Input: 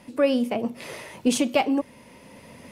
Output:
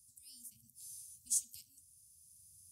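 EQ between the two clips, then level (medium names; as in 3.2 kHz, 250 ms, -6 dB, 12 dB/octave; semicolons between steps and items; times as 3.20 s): high-pass 150 Hz 12 dB/octave; brick-wall FIR band-stop 270–1100 Hz; inverse Chebyshev band-stop 360–1600 Hz, stop band 80 dB; 0.0 dB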